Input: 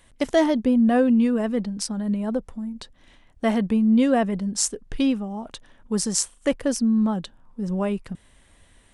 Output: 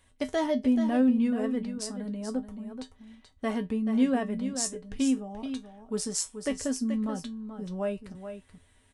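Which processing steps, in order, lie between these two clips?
tuned comb filter 86 Hz, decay 0.16 s, harmonics odd, mix 80%
single-tap delay 431 ms −9.5 dB

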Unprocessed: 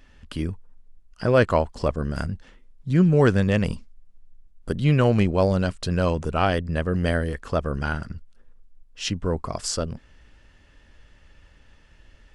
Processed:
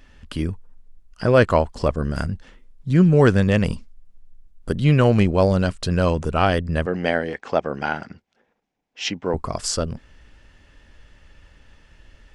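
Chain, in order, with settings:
0:06.86–0:09.34: loudspeaker in its box 230–6,300 Hz, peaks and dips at 790 Hz +9 dB, 1,200 Hz −4 dB, 2,200 Hz +6 dB, 4,500 Hz −3 dB
level +3 dB

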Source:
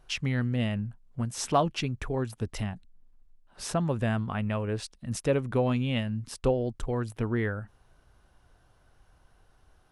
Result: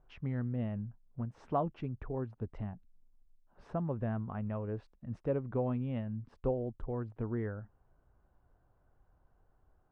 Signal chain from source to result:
low-pass filter 1,100 Hz 12 dB per octave
level −7 dB

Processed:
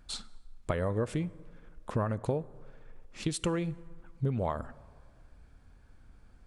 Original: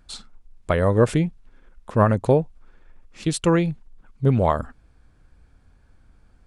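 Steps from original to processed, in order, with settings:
downward compressor 6 to 1, threshold −26 dBFS, peak gain reduction 14 dB
dense smooth reverb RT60 1.9 s, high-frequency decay 0.5×, DRR 18.5 dB
level −2 dB

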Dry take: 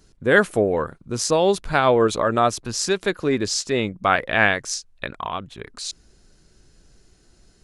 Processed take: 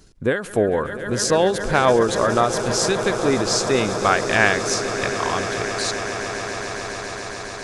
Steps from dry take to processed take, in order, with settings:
in parallel at +0.5 dB: downward compressor, threshold −29 dBFS, peak gain reduction 17.5 dB
on the sum: echo that builds up and dies away 138 ms, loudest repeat 8, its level −16 dB
every ending faded ahead of time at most 110 dB per second
level −1 dB

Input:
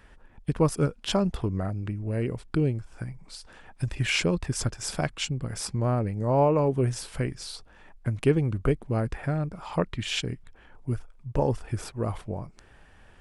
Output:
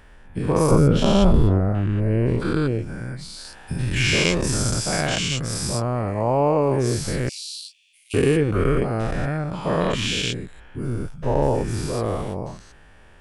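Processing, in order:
every bin's largest magnitude spread in time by 240 ms
0:00.71–0:02.40: spectral tilt −2.5 dB per octave
0:07.29–0:08.14: Butterworth high-pass 2,500 Hz 72 dB per octave
level −1 dB

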